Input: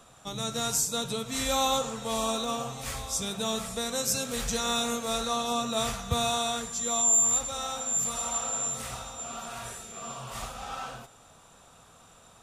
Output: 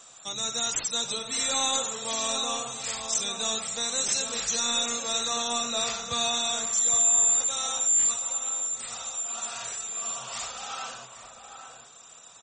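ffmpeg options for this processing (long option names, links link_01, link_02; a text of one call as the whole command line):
ffmpeg -i in.wav -filter_complex "[0:a]asplit=3[link_01][link_02][link_03];[link_01]afade=type=out:start_time=5.69:duration=0.02[link_04];[link_02]lowpass=7100,afade=type=in:start_time=5.69:duration=0.02,afade=type=out:start_time=6.43:duration=0.02[link_05];[link_03]afade=type=in:start_time=6.43:duration=0.02[link_06];[link_04][link_05][link_06]amix=inputs=3:normalize=0,aemphasis=mode=production:type=riaa,asettb=1/sr,asplit=3[link_07][link_08][link_09];[link_07]atrim=end=8.134[link_10];[link_08]atrim=start=8.13:end=9.38,asetpts=PTS-STARTPTS,afade=type=in:duration=0.004:curve=qsin,afade=type=out:start_time=1.246:duration=0.004:curve=qsin,acompressor=threshold=-30dB:ratio=3[link_11];[link_09]atrim=start=9.376[link_12];[link_10][link_11]acrossfade=duration=0.004:curve1=hsin:curve2=qsin[link_13];[link_13][link_12]acrossfade=duration=0.004:curve1=qsin:curve2=hsin,asoftclip=type=tanh:threshold=-19.5dB,asplit=2[link_14][link_15];[link_15]adelay=816.3,volume=-7dB,highshelf=frequency=4000:gain=-18.4[link_16];[link_14][link_16]amix=inputs=2:normalize=0" -ar 48000 -c:a libmp3lame -b:a 32k out.mp3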